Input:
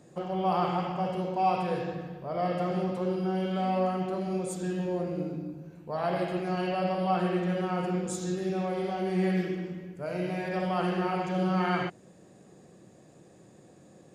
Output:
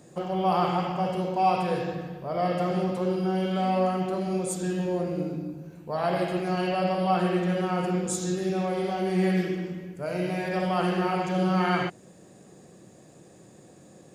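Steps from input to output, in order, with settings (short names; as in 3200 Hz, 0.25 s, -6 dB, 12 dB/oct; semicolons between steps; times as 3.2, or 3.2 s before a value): high shelf 5400 Hz +6 dB; gain +3 dB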